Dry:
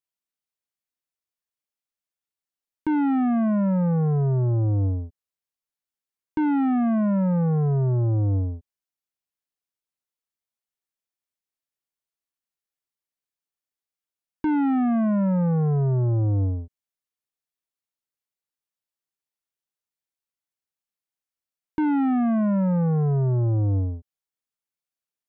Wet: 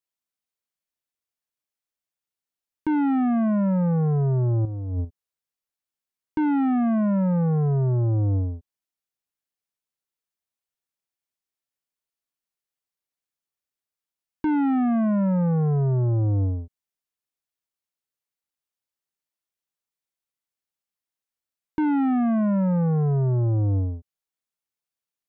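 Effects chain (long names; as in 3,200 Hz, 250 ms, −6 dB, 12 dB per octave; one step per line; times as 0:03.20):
0:04.65–0:05.05: compressor whose output falls as the input rises −28 dBFS, ratio −1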